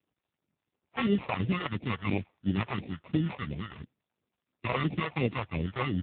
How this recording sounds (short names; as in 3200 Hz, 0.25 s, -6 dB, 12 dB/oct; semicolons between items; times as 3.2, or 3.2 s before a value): aliases and images of a low sample rate 1600 Hz, jitter 0%; phasing stages 2, 2.9 Hz, lowest notch 220–1100 Hz; AMR-NB